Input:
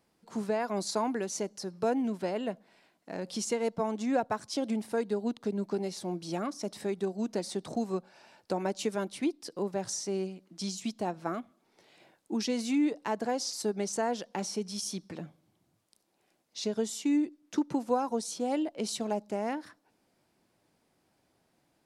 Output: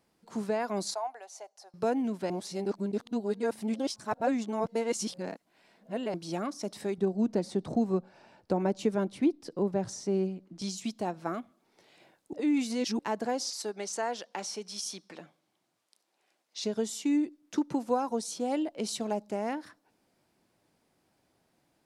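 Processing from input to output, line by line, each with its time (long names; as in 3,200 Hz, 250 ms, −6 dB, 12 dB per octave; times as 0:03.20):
0:00.94–0:01.74: four-pole ladder high-pass 660 Hz, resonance 70%
0:02.30–0:06.14: reverse
0:06.98–0:10.62: spectral tilt −2.5 dB per octave
0:12.33–0:12.99: reverse
0:13.50–0:16.62: meter weighting curve A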